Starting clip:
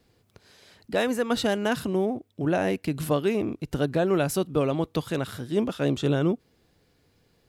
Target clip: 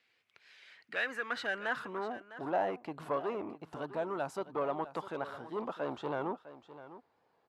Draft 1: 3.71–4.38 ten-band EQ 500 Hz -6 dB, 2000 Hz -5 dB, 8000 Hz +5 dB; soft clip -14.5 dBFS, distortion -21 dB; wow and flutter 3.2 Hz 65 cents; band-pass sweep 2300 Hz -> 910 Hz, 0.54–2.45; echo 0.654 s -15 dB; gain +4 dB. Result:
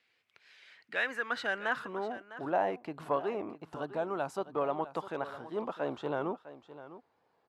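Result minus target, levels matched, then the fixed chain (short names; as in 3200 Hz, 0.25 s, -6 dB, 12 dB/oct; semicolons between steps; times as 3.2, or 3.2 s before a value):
soft clip: distortion -9 dB
3.71–4.38 ten-band EQ 500 Hz -6 dB, 2000 Hz -5 dB, 8000 Hz +5 dB; soft clip -21 dBFS, distortion -13 dB; wow and flutter 3.2 Hz 65 cents; band-pass sweep 2300 Hz -> 910 Hz, 0.54–2.45; echo 0.654 s -15 dB; gain +4 dB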